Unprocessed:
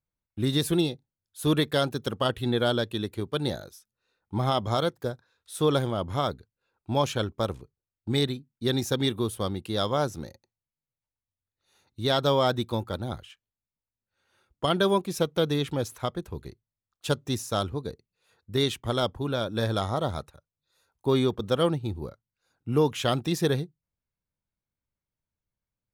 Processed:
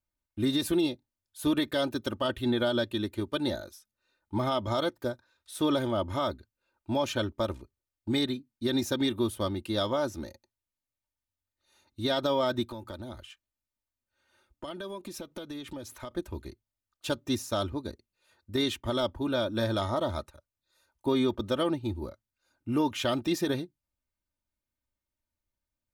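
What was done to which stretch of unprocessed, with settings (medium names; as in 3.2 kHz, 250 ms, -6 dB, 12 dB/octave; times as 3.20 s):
12.68–16.11 s: compression 16:1, threshold -34 dBFS
whole clip: dynamic bell 9 kHz, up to -4 dB, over -51 dBFS, Q 0.79; comb 3.3 ms, depth 67%; peak limiter -16.5 dBFS; trim -1.5 dB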